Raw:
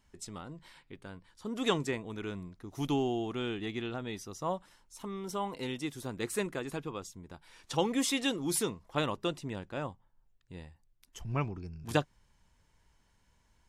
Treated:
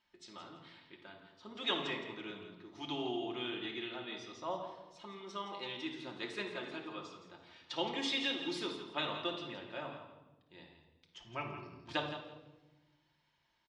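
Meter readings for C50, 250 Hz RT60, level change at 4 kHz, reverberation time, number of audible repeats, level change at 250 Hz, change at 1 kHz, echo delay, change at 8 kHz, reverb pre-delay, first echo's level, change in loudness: 4.5 dB, 1.8 s, +1.0 dB, 1.1 s, 2, −8.0 dB, −4.5 dB, 167 ms, −16.5 dB, 3 ms, −10.0 dB, −4.5 dB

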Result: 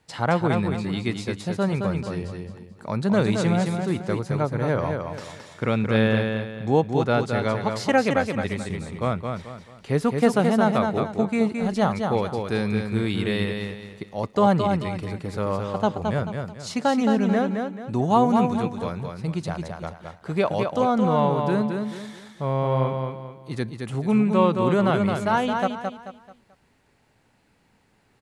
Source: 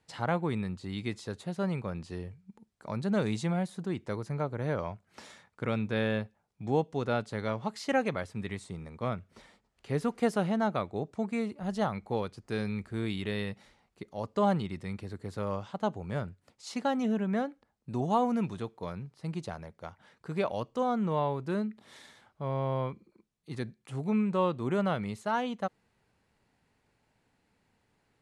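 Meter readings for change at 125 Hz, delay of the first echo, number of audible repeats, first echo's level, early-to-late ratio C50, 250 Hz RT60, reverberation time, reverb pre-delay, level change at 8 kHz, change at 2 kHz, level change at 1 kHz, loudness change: +9.5 dB, 218 ms, 4, −5.0 dB, no reverb audible, no reverb audible, no reverb audible, no reverb audible, +9.5 dB, +9.5 dB, +9.5 dB, +9.0 dB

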